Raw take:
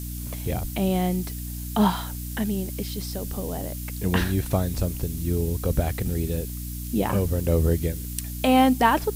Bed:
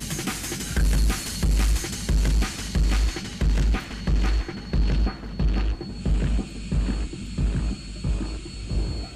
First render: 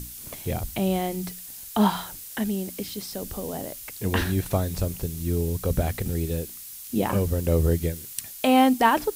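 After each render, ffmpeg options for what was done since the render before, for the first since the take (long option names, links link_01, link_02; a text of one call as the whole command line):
ffmpeg -i in.wav -af "bandreject=frequency=60:width_type=h:width=6,bandreject=frequency=120:width_type=h:width=6,bandreject=frequency=180:width_type=h:width=6,bandreject=frequency=240:width_type=h:width=6,bandreject=frequency=300:width_type=h:width=6" out.wav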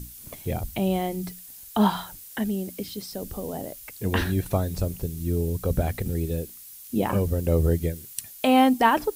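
ffmpeg -i in.wav -af "afftdn=noise_reduction=6:noise_floor=-41" out.wav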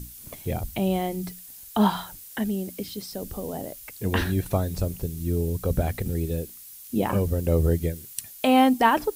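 ffmpeg -i in.wav -af anull out.wav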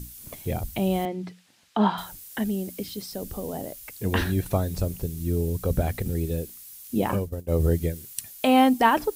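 ffmpeg -i in.wav -filter_complex "[0:a]asettb=1/sr,asplit=3[link_01][link_02][link_03];[link_01]atrim=end=1.054[link_04];[link_02]atrim=start=1.05:end=1.98,asetpts=PTS-STARTPTS,afade=type=in:duration=0.004:curve=qsin,afade=type=out:start_time=0.926:duration=0.004:curve=qsin,highpass=170,lowpass=3300[link_05];[link_03]atrim=start=1.976[link_06];[link_04][link_05]acrossfade=duration=0.004:curve1=hsin:curve2=qsin[link_07];[link_07][link_06]acrossfade=duration=0.004:curve1=qsin:curve2=hsin,asplit=3[link_08][link_09][link_10];[link_08]afade=type=out:start_time=7.15:duration=0.02[link_11];[link_09]agate=range=-33dB:threshold=-18dB:ratio=3:release=100:detection=peak,afade=type=in:start_time=7.15:duration=0.02,afade=type=out:start_time=7.59:duration=0.02[link_12];[link_10]afade=type=in:start_time=7.59:duration=0.02[link_13];[link_11][link_12][link_13]amix=inputs=3:normalize=0" out.wav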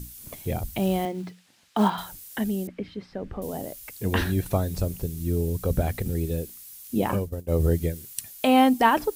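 ffmpeg -i in.wav -filter_complex "[0:a]asettb=1/sr,asplit=3[link_01][link_02][link_03];[link_01]atrim=end=0.744[link_04];[link_02]atrim=start=0.74:end=2.12,asetpts=PTS-STARTPTS,afade=type=in:duration=0.004:curve=qsin,afade=type=out:start_time=1.376:duration=0.004:curve=qsin,acrusher=bits=6:mode=log:mix=0:aa=0.000001[link_05];[link_03]atrim=start=2.116[link_06];[link_04][link_05]acrossfade=duration=0.004:curve1=hsin:curve2=qsin[link_07];[link_07][link_06]acrossfade=duration=0.004:curve1=qsin:curve2=hsin,asettb=1/sr,asplit=3[link_08][link_09][link_10];[link_08]atrim=end=2.674[link_11];[link_09]atrim=start=2.67:end=3.42,asetpts=PTS-STARTPTS,afade=type=in:duration=0.004:curve=qsin,afade=type=out:start_time=0.746:duration=0.004:curve=qsin,lowpass=frequency=1900:width_type=q:width=1.5[link_12];[link_10]atrim=start=3.416[link_13];[link_11][link_12]acrossfade=duration=0.004:curve1=hsin:curve2=qsin[link_14];[link_14][link_13]acrossfade=duration=0.004:curve1=qsin:curve2=hsin" out.wav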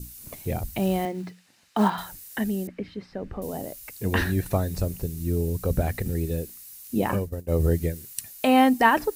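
ffmpeg -i in.wav -af "bandreject=frequency=3300:width=12,adynamicequalizer=threshold=0.00398:dfrequency=1800:dqfactor=5:tfrequency=1800:tqfactor=5:attack=5:release=100:ratio=0.375:range=3:mode=boostabove:tftype=bell" out.wav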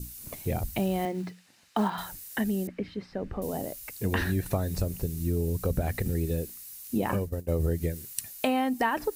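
ffmpeg -i in.wav -af "acompressor=threshold=-23dB:ratio=6" out.wav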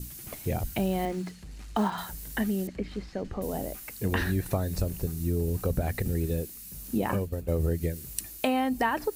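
ffmpeg -i in.wav -i bed.wav -filter_complex "[1:a]volume=-23dB[link_01];[0:a][link_01]amix=inputs=2:normalize=0" out.wav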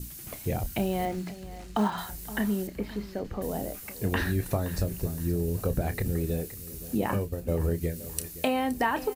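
ffmpeg -i in.wav -filter_complex "[0:a]asplit=2[link_01][link_02];[link_02]adelay=29,volume=-12dB[link_03];[link_01][link_03]amix=inputs=2:normalize=0,aecho=1:1:520|1040|1560:0.158|0.0555|0.0194" out.wav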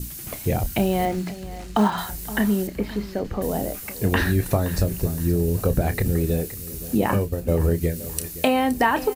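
ffmpeg -i in.wav -af "volume=7dB,alimiter=limit=-3dB:level=0:latency=1" out.wav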